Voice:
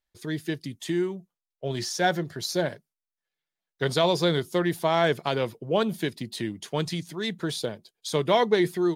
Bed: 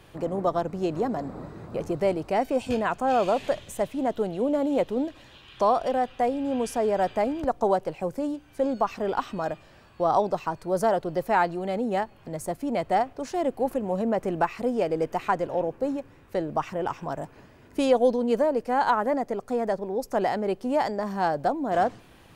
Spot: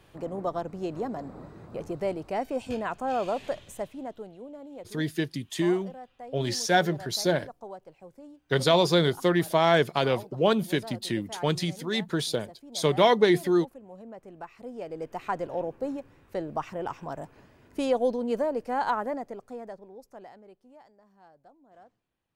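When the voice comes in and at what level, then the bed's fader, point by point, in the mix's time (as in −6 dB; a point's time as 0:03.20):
4.70 s, +1.5 dB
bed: 0:03.71 −5.5 dB
0:04.51 −19 dB
0:14.33 −19 dB
0:15.40 −4.5 dB
0:18.96 −4.5 dB
0:20.93 −31.5 dB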